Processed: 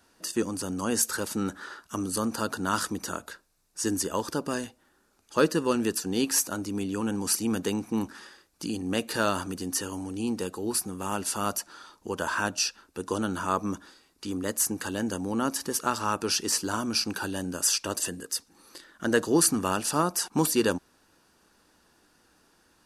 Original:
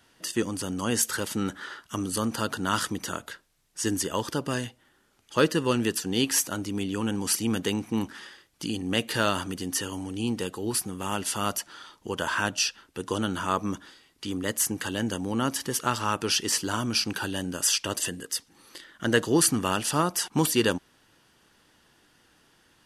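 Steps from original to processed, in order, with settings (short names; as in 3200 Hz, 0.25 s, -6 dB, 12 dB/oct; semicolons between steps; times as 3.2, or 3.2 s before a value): thirty-one-band EQ 125 Hz -12 dB, 2000 Hz -7 dB, 3150 Hz -10 dB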